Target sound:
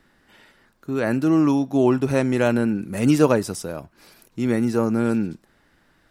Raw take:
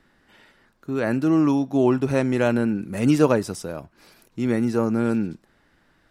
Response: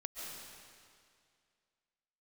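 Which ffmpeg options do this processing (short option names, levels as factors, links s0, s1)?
-af "highshelf=f=8000:g=5.5,volume=1.12"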